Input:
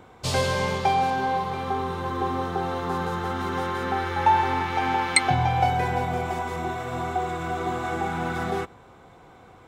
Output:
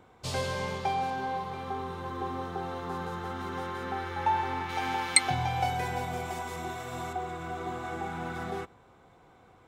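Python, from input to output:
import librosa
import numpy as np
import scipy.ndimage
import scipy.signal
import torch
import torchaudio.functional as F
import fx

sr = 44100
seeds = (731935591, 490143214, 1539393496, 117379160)

y = fx.high_shelf(x, sr, hz=3400.0, db=10.5, at=(4.69, 7.13))
y = y * 10.0 ** (-8.0 / 20.0)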